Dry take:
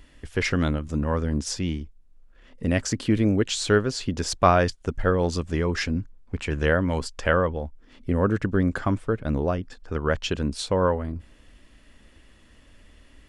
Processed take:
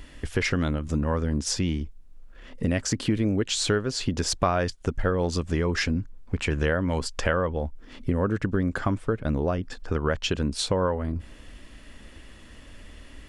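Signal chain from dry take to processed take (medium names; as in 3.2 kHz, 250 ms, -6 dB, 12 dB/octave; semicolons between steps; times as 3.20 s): compression 3:1, threshold -31 dBFS, peak gain reduction 14.5 dB; trim +7 dB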